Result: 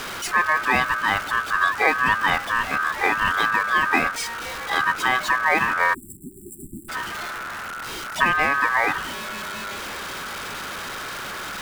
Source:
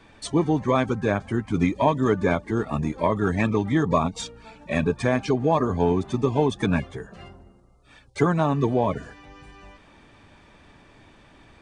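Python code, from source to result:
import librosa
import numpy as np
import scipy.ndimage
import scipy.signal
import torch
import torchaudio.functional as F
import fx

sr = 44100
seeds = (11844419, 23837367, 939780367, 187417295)

y = x + 0.5 * 10.0 ** (-26.5 / 20.0) * np.sign(x)
y = y * np.sin(2.0 * np.pi * 1400.0 * np.arange(len(y)) / sr)
y = fx.spec_erase(y, sr, start_s=5.94, length_s=0.95, low_hz=390.0, high_hz=7300.0)
y = y * librosa.db_to_amplitude(2.5)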